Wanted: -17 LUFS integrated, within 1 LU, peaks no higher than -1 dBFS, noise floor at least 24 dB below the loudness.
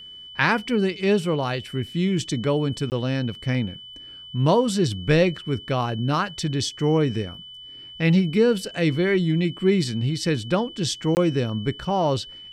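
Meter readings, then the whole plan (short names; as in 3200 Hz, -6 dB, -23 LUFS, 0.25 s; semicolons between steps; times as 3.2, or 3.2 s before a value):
dropouts 2; longest dropout 19 ms; steady tone 3000 Hz; tone level -39 dBFS; loudness -23.0 LUFS; peak -6.0 dBFS; loudness target -17.0 LUFS
-> interpolate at 2.9/11.15, 19 ms; notch 3000 Hz, Q 30; gain +6 dB; limiter -1 dBFS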